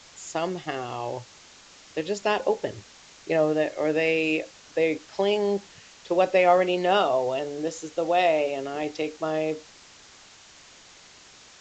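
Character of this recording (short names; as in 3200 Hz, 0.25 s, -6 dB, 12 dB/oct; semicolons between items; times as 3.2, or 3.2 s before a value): a quantiser's noise floor 8-bit, dither triangular; A-law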